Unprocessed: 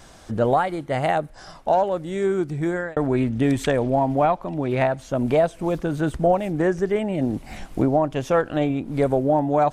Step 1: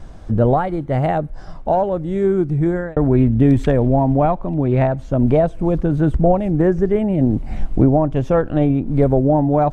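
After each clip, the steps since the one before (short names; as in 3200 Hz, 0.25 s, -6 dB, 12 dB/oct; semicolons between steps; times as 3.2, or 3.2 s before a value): tilt -3.5 dB/oct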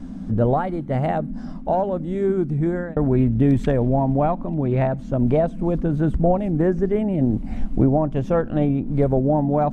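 band noise 170–270 Hz -30 dBFS; gain -4 dB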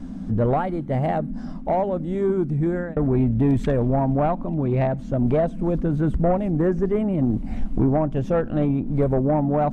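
soft clip -11.5 dBFS, distortion -19 dB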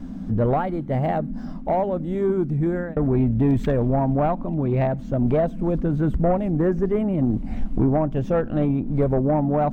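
decimation joined by straight lines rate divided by 2×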